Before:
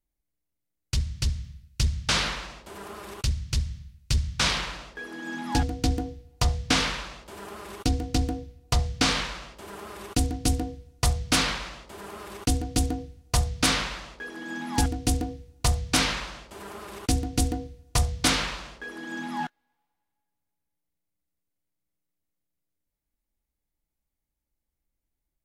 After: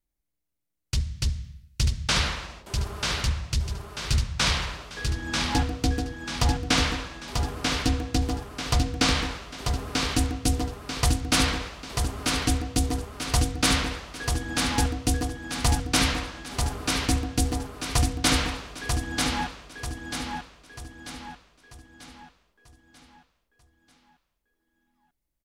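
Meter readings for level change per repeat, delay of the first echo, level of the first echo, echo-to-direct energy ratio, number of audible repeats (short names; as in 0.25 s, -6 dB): -7.0 dB, 0.94 s, -4.0 dB, -3.0 dB, 5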